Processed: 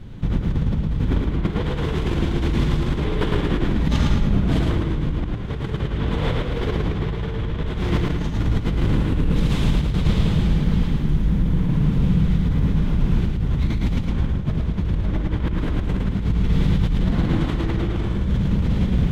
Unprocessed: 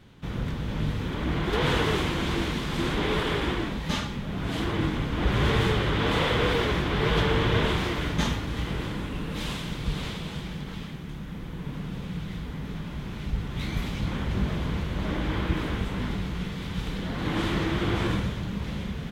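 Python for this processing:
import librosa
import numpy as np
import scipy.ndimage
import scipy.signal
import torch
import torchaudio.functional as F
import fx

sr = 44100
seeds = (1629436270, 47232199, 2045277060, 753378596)

y = fx.tilt_eq(x, sr, slope=-3.5)
y = fx.over_compress(y, sr, threshold_db=-22.0, ratio=-1.0)
y = fx.high_shelf(y, sr, hz=3400.0, db=9.5)
y = fx.echo_feedback(y, sr, ms=110, feedback_pct=34, wet_db=-3)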